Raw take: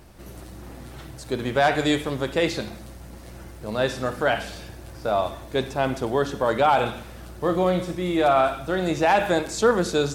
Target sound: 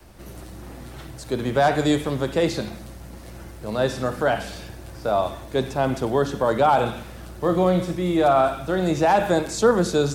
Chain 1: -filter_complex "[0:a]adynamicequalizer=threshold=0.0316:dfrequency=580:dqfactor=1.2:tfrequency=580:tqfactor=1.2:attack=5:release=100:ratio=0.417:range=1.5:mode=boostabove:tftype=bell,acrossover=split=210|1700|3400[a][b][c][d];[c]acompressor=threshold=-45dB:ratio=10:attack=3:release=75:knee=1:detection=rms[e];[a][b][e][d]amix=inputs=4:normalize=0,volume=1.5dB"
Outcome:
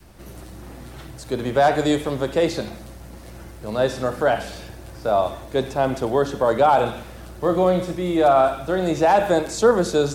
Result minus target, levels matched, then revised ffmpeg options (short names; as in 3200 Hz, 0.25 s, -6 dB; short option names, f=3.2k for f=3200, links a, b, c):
125 Hz band -3.5 dB
-filter_complex "[0:a]adynamicequalizer=threshold=0.0316:dfrequency=160:dqfactor=1.2:tfrequency=160:tqfactor=1.2:attack=5:release=100:ratio=0.417:range=1.5:mode=boostabove:tftype=bell,acrossover=split=210|1700|3400[a][b][c][d];[c]acompressor=threshold=-45dB:ratio=10:attack=3:release=75:knee=1:detection=rms[e];[a][b][e][d]amix=inputs=4:normalize=0,volume=1.5dB"